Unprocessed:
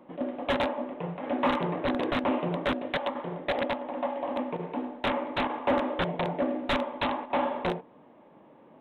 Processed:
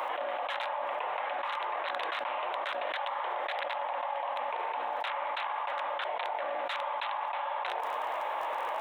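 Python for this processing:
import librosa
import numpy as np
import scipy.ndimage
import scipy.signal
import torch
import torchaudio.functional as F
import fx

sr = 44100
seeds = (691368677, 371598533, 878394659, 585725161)

y = scipy.signal.sosfilt(scipy.signal.butter(4, 760.0, 'highpass', fs=sr, output='sos'), x)
y = fx.dmg_crackle(y, sr, seeds[0], per_s=29.0, level_db=-65.0)
y = fx.env_flatten(y, sr, amount_pct=100)
y = y * 10.0 ** (-8.5 / 20.0)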